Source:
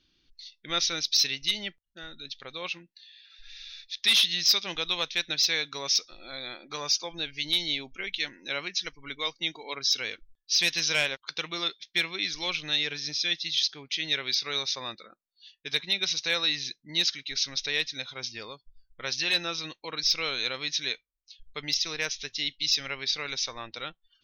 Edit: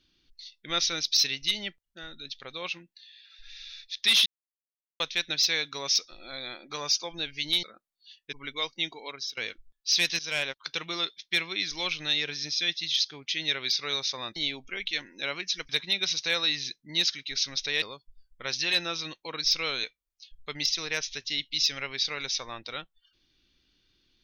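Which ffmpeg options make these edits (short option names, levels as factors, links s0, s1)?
-filter_complex "[0:a]asplit=11[s0][s1][s2][s3][s4][s5][s6][s7][s8][s9][s10];[s0]atrim=end=4.26,asetpts=PTS-STARTPTS,afade=t=out:st=4.256:d=0.004:c=hsin[s11];[s1]atrim=start=4.26:end=5,asetpts=PTS-STARTPTS,volume=0[s12];[s2]atrim=start=5:end=7.632,asetpts=PTS-STARTPTS,afade=t=in:d=0.004:c=hsin[s13];[s3]atrim=start=14.988:end=15.692[s14];[s4]atrim=start=8.958:end=10,asetpts=PTS-STARTPTS,afade=t=out:st=0.622:d=0.42:silence=0.0891251[s15];[s5]atrim=start=10:end=10.82,asetpts=PTS-STARTPTS,afade=t=in:d=0.004:c=hsin:silence=0.0891251,afade=t=out:st=0.816:d=0.004:c=hsin:silence=0.141254[s16];[s6]atrim=start=10.82:end=14.992,asetpts=PTS-STARTPTS,afade=t=in:d=0.43:c=qsin:silence=0.141254[s17];[s7]atrim=start=7.628:end=8.962[s18];[s8]atrim=start=15.688:end=17.822[s19];[s9]atrim=start=18.408:end=20.432[s20];[s10]atrim=start=20.918[s21];[s11][s12][s13]concat=n=3:v=0:a=1[s22];[s22][s14]acrossfade=d=0.004:c1=hsin:c2=hsin[s23];[s15][s16][s17]concat=n=3:v=0:a=1[s24];[s23][s24]acrossfade=d=0.004:c1=hsin:c2=hsin[s25];[s25][s18]acrossfade=d=0.004:c1=hsin:c2=hsin[s26];[s26][s19]acrossfade=d=0.004:c1=hsin:c2=hsin[s27];[s27][s20]acrossfade=d=0.004:c1=hsin:c2=hsin[s28];[s28][s21]acrossfade=d=0.004:c1=hsin:c2=hsin"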